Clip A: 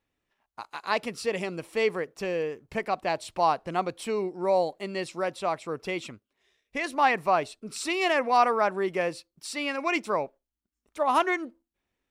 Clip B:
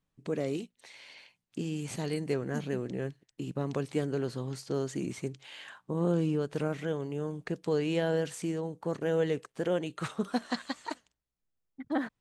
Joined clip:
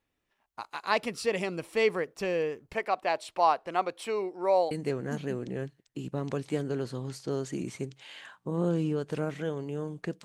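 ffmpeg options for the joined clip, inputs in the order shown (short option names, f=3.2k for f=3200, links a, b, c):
-filter_complex "[0:a]asettb=1/sr,asplit=3[a][b][c];[a]atrim=end=2.734[d];[b]atrim=start=2.73:end=4.71,asetpts=PTS-STARTPTS,afade=t=in:d=0.004:c=qsin,afade=t=out:st=1.976:d=0.004:c=qsin,bass=f=250:g=-14,treble=f=4k:g=-4[e];[c]atrim=start=4.706[f];[d][e]acrossfade=d=0.004:c1=hsin:c2=qsin[g];[g][f]acrossfade=d=0.004:c1=qsin:c2=hsin,apad=whole_dur=10.24,atrim=end=10.24,atrim=end=4.712[h];[1:a]atrim=start=2.138:end=7.67[i];[h][i]acrossfade=d=0.004:c1=hsin:c2=hsin"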